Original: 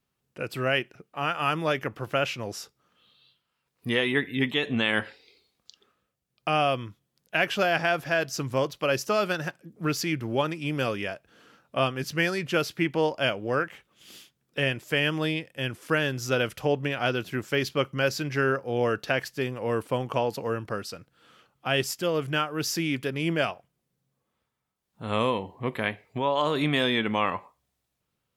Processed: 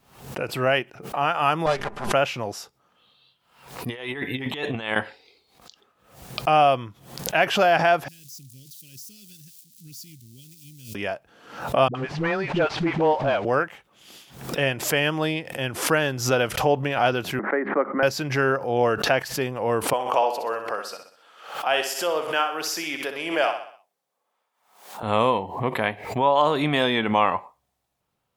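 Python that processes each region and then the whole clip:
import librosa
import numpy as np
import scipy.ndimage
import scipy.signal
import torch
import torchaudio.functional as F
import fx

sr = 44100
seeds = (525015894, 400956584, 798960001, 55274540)

y = fx.chain(x, sr, fx.lower_of_two(delay_ms=5.0),
    fx.steep_lowpass(hz=11000.0, slope=36), at=(1.66, 2.13))
y = fx.chain(y, sr, fx.notch(hz=240.0, q=7.1),
    fx.over_compress(threshold_db=-32.0, ratio=-0.5), at=(3.89, 4.96))
y = fx.chain(y, sr, fx.crossing_spikes(level_db=-23.0),
    fx.cheby1_bandstop(low_hz=230.0, high_hz=4100.0, order=2),
    fx.tone_stack(knobs='6-0-2'), at=(8.08, 10.95))
y = fx.chain(y, sr, fx.delta_mod(bps=64000, step_db=-39.0),
    fx.lowpass(hz=3000.0, slope=12),
    fx.dispersion(late='highs', ms=67.0, hz=340.0), at=(11.88, 13.45))
y = fx.chain(y, sr, fx.cheby1_bandpass(low_hz=200.0, high_hz=2000.0, order=5),
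    fx.band_squash(depth_pct=40), at=(17.39, 18.03))
y = fx.chain(y, sr, fx.highpass(hz=500.0, slope=12),
    fx.echo_feedback(ms=63, feedback_pct=47, wet_db=-8), at=(19.93, 25.03))
y = fx.peak_eq(y, sr, hz=800.0, db=8.5, octaves=1.0)
y = fx.pre_swell(y, sr, db_per_s=94.0)
y = y * librosa.db_to_amplitude(1.0)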